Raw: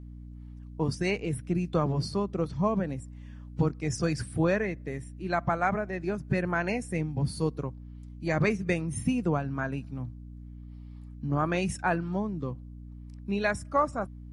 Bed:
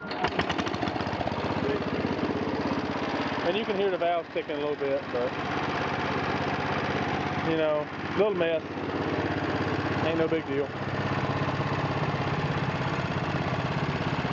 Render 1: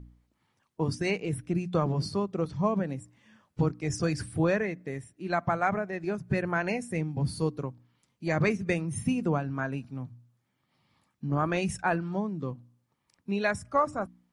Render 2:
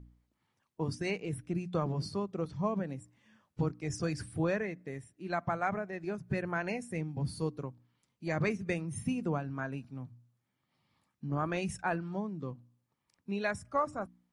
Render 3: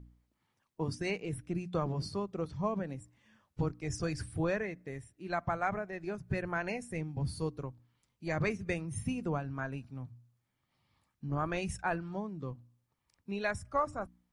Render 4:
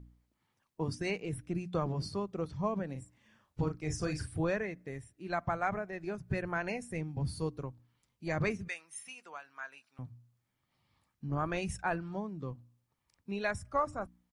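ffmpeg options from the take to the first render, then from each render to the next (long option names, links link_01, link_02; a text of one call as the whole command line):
ffmpeg -i in.wav -af "bandreject=frequency=60:width_type=h:width=4,bandreject=frequency=120:width_type=h:width=4,bandreject=frequency=180:width_type=h:width=4,bandreject=frequency=240:width_type=h:width=4,bandreject=frequency=300:width_type=h:width=4" out.wav
ffmpeg -i in.wav -af "volume=-5.5dB" out.wav
ffmpeg -i in.wav -af "asubboost=boost=4:cutoff=83" out.wav
ffmpeg -i in.wav -filter_complex "[0:a]asplit=3[link_01][link_02][link_03];[link_01]afade=type=out:start_time=2.94:duration=0.02[link_04];[link_02]asplit=2[link_05][link_06];[link_06]adelay=39,volume=-7.5dB[link_07];[link_05][link_07]amix=inputs=2:normalize=0,afade=type=in:start_time=2.94:duration=0.02,afade=type=out:start_time=4.34:duration=0.02[link_08];[link_03]afade=type=in:start_time=4.34:duration=0.02[link_09];[link_04][link_08][link_09]amix=inputs=3:normalize=0,asettb=1/sr,asplit=3[link_10][link_11][link_12];[link_10]atrim=end=8.684[link_13];[link_11]atrim=start=8.68:end=9.99,asetpts=PTS-STARTPTS,afade=type=in:duration=0.004:curve=qsin,afade=type=out:start_time=1.306:duration=0.004:curve=qsin,highpass=1300[link_14];[link_12]atrim=start=9.986[link_15];[link_13][link_14]acrossfade=duration=0.004:curve1=hsin:curve2=qsin[link_16];[link_16][link_15]acrossfade=duration=0.004:curve1=qsin:curve2=hsin" out.wav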